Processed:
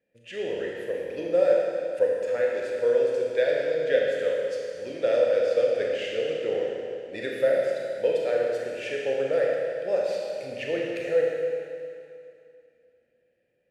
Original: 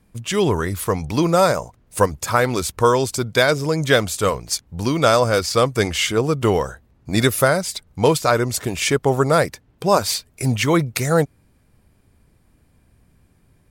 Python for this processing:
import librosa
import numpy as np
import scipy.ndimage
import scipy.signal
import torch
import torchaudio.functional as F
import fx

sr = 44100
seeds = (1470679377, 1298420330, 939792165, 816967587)

y = fx.vowel_filter(x, sr, vowel='e')
y = fx.rev_schroeder(y, sr, rt60_s=2.5, comb_ms=26, drr_db=-2.5)
y = F.gain(torch.from_numpy(y), -2.5).numpy()